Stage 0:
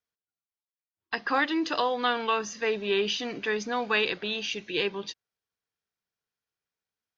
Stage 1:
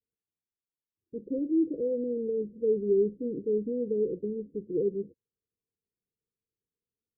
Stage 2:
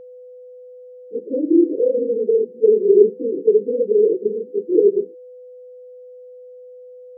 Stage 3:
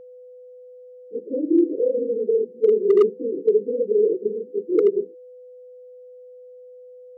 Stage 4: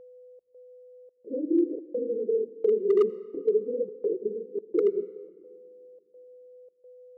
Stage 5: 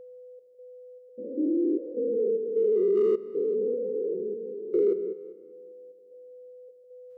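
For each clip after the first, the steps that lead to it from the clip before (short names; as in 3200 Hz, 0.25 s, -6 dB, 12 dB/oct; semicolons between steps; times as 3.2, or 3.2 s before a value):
steep low-pass 510 Hz 96 dB/oct; gain +3 dB
phase scrambler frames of 50 ms; high-pass sweep 380 Hz -> 100 Hz, 6.26–6.83; whine 500 Hz -44 dBFS; gain +6.5 dB
hard clip -5.5 dBFS, distortion -24 dB; gain -3.5 dB
step gate "xxxxx..xx" 193 bpm -60 dB; on a send at -18 dB: reverb RT60 1.7 s, pre-delay 77 ms; on the sum: gain -6 dB
stepped spectrum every 0.2 s; gain +3.5 dB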